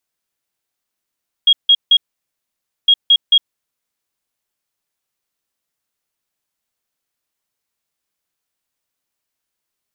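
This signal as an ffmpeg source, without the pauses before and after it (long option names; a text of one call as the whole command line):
ffmpeg -f lavfi -i "aevalsrc='0.501*sin(2*PI*3280*t)*clip(min(mod(mod(t,1.41),0.22),0.06-mod(mod(t,1.41),0.22))/0.005,0,1)*lt(mod(t,1.41),0.66)':duration=2.82:sample_rate=44100" out.wav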